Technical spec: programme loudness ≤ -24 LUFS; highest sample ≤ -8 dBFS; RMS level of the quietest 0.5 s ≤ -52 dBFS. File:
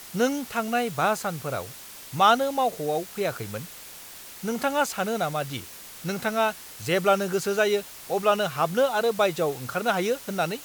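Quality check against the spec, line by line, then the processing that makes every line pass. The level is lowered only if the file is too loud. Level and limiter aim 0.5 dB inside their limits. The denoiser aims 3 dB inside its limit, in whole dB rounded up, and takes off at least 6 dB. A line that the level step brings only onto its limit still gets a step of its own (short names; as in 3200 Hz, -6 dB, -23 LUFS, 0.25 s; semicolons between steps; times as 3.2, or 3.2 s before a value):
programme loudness -25.5 LUFS: OK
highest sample -7.0 dBFS: fail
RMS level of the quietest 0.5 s -43 dBFS: fail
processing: denoiser 12 dB, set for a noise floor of -43 dBFS; limiter -8.5 dBFS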